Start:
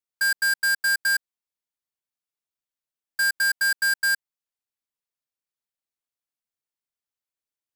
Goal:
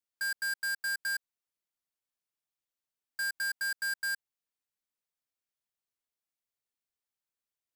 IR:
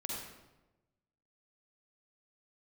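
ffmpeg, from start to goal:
-af "alimiter=level_in=5.5dB:limit=-24dB:level=0:latency=1,volume=-5.5dB,volume=-2dB"

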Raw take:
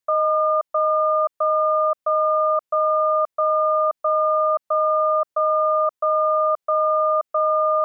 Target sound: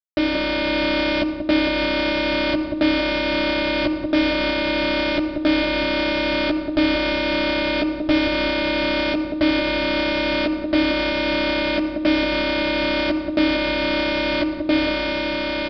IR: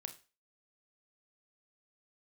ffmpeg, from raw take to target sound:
-filter_complex "[0:a]asoftclip=type=tanh:threshold=-20.5dB,acrusher=bits=3:mix=0:aa=0.000001,dynaudnorm=f=100:g=13:m=11dB,asplit=2[a][b];[b]adelay=91,lowpass=f=1.1k:p=1,volume=-5dB,asplit=2[c][d];[d]adelay=91,lowpass=f=1.1k:p=1,volume=0.47,asplit=2[e][f];[f]adelay=91,lowpass=f=1.1k:p=1,volume=0.47,asplit=2[g][h];[h]adelay=91,lowpass=f=1.1k:p=1,volume=0.47,asplit=2[i][j];[j]adelay=91,lowpass=f=1.1k:p=1,volume=0.47,asplit=2[k][l];[l]adelay=91,lowpass=f=1.1k:p=1,volume=0.47[m];[a][c][e][g][i][k][m]amix=inputs=7:normalize=0,asplit=2[n][o];[1:a]atrim=start_sample=2205,adelay=7[p];[o][p]afir=irnorm=-1:irlink=0,volume=2.5dB[q];[n][q]amix=inputs=2:normalize=0,alimiter=limit=-14dB:level=0:latency=1:release=484,asetrate=22050,aresample=44100,equalizer=f=1k:w=5.3:g=-8.5,aresample=11025,aresample=44100,lowshelf=f=470:g=8"

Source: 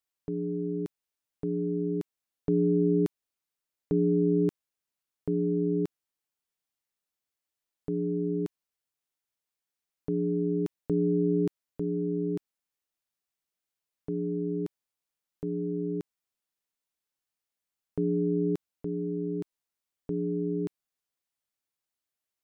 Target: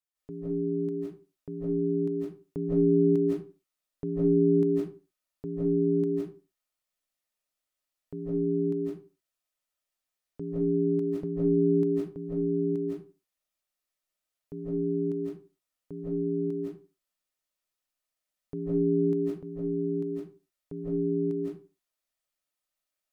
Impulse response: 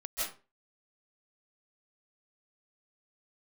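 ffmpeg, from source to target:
-filter_complex "[1:a]atrim=start_sample=2205[a];[0:a][a]afir=irnorm=-1:irlink=0,asetrate=42777,aresample=44100,volume=-2dB"

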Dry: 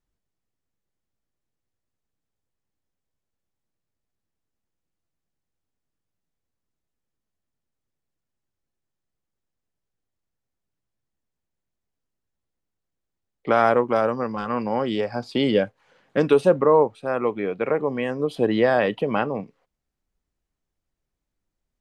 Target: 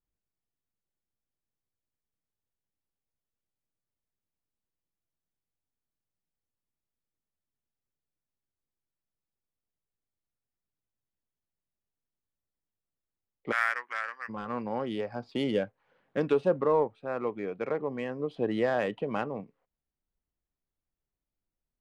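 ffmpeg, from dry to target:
-filter_complex "[0:a]asplit=3[a][b][c];[a]afade=t=out:st=13.51:d=0.02[d];[b]highpass=f=1.8k:t=q:w=6,afade=t=in:st=13.51:d=0.02,afade=t=out:st=14.28:d=0.02[e];[c]afade=t=in:st=14.28:d=0.02[f];[d][e][f]amix=inputs=3:normalize=0,adynamicsmooth=sensitivity=2:basefreq=3.3k,volume=-8.5dB"

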